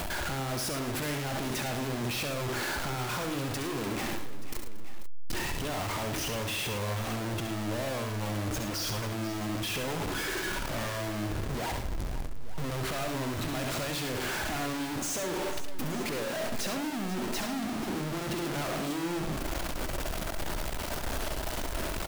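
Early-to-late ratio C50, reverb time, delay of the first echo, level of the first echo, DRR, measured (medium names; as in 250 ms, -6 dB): no reverb, no reverb, 67 ms, -7.0 dB, no reverb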